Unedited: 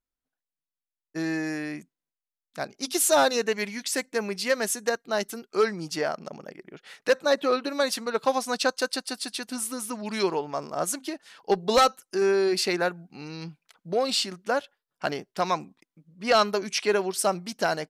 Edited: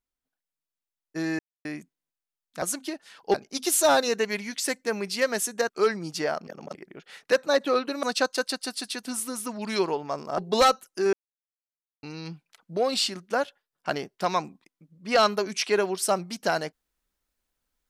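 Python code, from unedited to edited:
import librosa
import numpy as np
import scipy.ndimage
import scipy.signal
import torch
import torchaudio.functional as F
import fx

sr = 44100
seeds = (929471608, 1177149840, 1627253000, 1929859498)

y = fx.edit(x, sr, fx.silence(start_s=1.39, length_s=0.26),
    fx.cut(start_s=4.97, length_s=0.49),
    fx.reverse_span(start_s=6.24, length_s=0.28),
    fx.cut(start_s=7.8, length_s=0.67),
    fx.move(start_s=10.82, length_s=0.72, to_s=2.62),
    fx.silence(start_s=12.29, length_s=0.9), tone=tone)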